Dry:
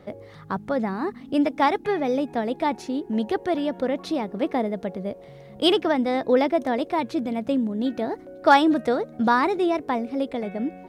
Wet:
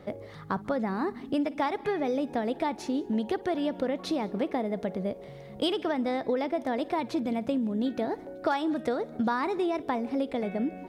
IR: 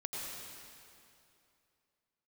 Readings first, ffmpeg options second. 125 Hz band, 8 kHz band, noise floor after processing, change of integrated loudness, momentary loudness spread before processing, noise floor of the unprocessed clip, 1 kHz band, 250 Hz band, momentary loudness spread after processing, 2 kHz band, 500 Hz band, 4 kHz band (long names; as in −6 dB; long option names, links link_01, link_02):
−2.5 dB, can't be measured, −45 dBFS, −6.0 dB, 10 LU, −45 dBFS, −8.0 dB, −5.0 dB, 4 LU, −8.0 dB, −6.0 dB, −8.0 dB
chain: -filter_complex "[0:a]acompressor=threshold=-25dB:ratio=6,asplit=2[link_01][link_02];[1:a]atrim=start_sample=2205,afade=type=out:start_time=0.21:duration=0.01,atrim=end_sample=9702,adelay=55[link_03];[link_02][link_03]afir=irnorm=-1:irlink=0,volume=-18dB[link_04];[link_01][link_04]amix=inputs=2:normalize=0"